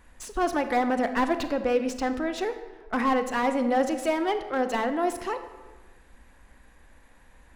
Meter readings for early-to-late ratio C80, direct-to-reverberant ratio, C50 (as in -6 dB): 12.0 dB, 9.0 dB, 10.5 dB